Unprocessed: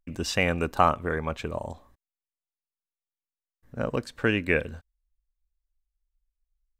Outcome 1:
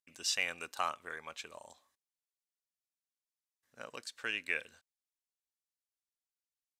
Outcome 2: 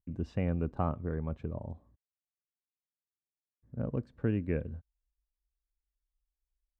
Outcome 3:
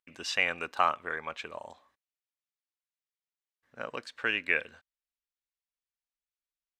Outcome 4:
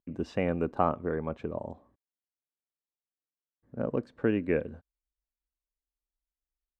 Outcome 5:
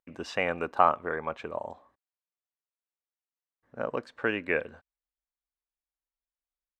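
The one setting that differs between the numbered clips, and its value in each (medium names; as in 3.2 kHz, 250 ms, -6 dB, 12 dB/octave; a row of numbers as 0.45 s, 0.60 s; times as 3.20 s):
band-pass filter, frequency: 6.9 kHz, 110 Hz, 2.5 kHz, 300 Hz, 910 Hz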